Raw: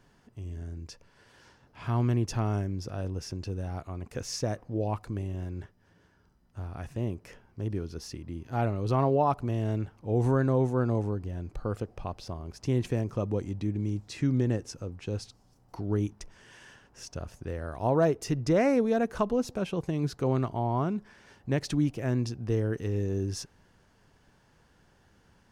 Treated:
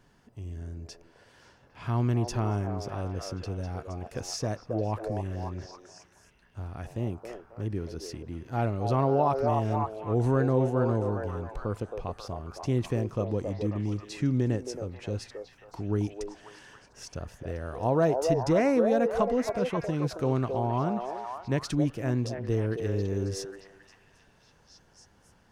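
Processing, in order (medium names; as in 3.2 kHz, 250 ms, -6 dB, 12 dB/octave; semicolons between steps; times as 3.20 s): vibrato 4.5 Hz 5.2 cents; repeats whose band climbs or falls 270 ms, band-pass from 570 Hz, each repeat 0.7 oct, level -1.5 dB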